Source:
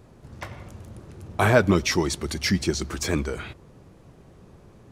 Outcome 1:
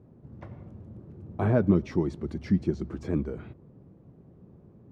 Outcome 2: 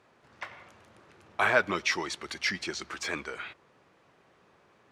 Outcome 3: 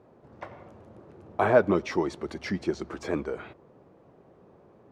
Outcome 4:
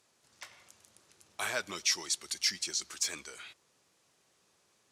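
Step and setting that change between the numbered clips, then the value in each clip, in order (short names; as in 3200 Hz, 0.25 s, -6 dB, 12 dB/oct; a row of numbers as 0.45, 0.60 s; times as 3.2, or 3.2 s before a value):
band-pass, frequency: 190, 1900, 590, 7000 Hz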